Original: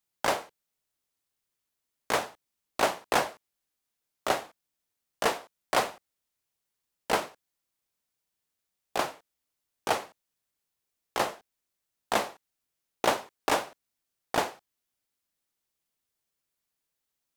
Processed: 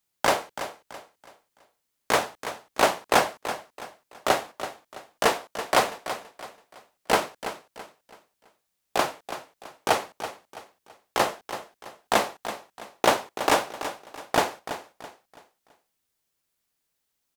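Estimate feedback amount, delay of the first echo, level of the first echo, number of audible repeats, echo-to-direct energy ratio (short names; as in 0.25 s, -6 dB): 35%, 0.331 s, -11.5 dB, 3, -11.0 dB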